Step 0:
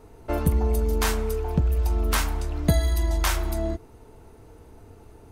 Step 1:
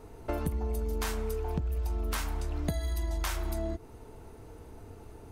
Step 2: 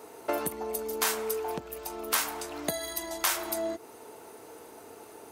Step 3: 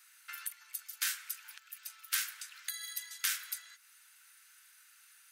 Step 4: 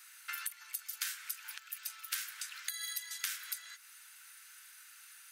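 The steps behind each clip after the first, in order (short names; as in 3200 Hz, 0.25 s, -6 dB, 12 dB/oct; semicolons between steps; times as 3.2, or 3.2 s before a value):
compressor, threshold -29 dBFS, peak gain reduction 13.5 dB
HPF 400 Hz 12 dB/oct; high shelf 7100 Hz +8 dB; gain +6.5 dB
elliptic high-pass 1500 Hz, stop band 60 dB; gain -4 dB
compressor 6:1, threshold -41 dBFS, peak gain reduction 12.5 dB; gain +5.5 dB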